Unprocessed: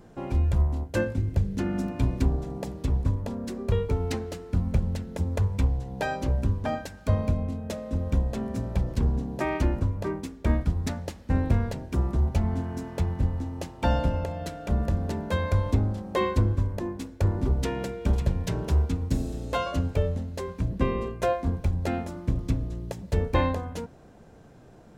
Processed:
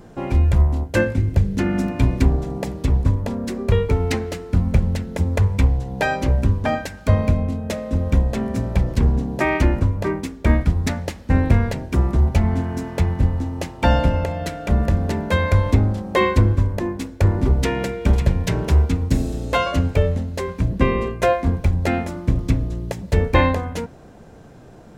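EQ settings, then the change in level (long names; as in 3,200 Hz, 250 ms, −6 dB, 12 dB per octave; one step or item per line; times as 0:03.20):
dynamic equaliser 2,100 Hz, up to +6 dB, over −53 dBFS, Q 2
+7.5 dB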